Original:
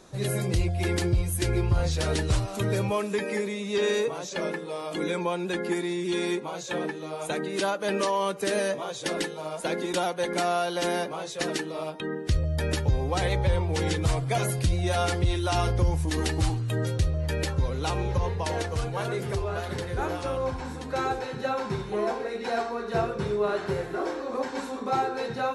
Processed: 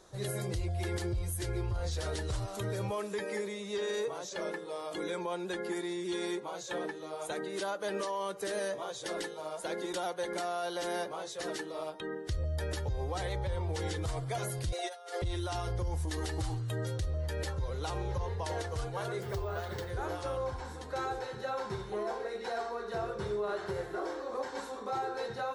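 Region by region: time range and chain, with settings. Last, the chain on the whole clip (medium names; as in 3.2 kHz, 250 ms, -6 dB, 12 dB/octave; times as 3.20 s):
14.72–15.22 s: steep high-pass 350 Hz 48 dB/octave + comb 4.2 ms, depth 60% + compressor with a negative ratio -32 dBFS, ratio -0.5
19.22–19.90 s: treble shelf 7.9 kHz -4.5 dB + careless resampling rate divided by 2×, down filtered, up hold
whole clip: graphic EQ with 31 bands 160 Hz -9 dB, 250 Hz -12 dB, 2.5 kHz -7 dB; peak limiter -21.5 dBFS; trim -5 dB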